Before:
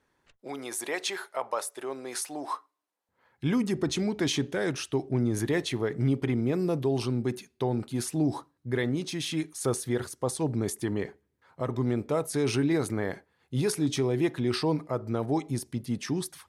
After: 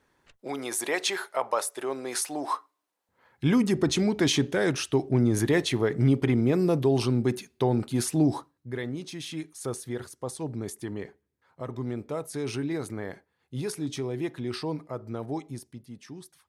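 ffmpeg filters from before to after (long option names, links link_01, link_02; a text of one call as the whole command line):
ffmpeg -i in.wav -af "volume=4dB,afade=type=out:start_time=8.22:duration=0.48:silence=0.354813,afade=type=out:start_time=15.34:duration=0.53:silence=0.398107" out.wav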